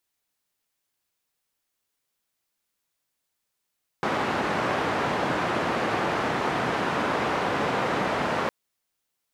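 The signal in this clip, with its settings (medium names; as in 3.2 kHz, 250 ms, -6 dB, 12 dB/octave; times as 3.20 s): noise band 130–1200 Hz, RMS -26 dBFS 4.46 s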